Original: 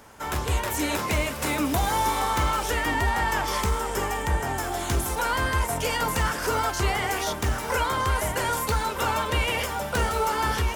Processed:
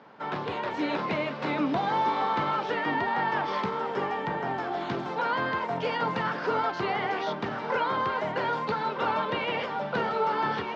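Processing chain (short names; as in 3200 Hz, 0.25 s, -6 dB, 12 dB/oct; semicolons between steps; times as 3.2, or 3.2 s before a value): elliptic band-pass 150–4300 Hz, stop band 40 dB; high shelf 2600 Hz -9.5 dB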